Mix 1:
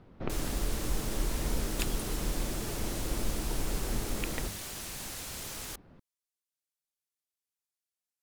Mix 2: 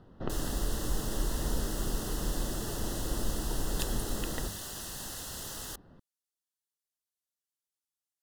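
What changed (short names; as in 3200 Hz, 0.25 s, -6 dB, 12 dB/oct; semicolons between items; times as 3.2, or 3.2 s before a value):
second sound: entry +2.00 s; master: add Butterworth band-stop 2300 Hz, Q 3.1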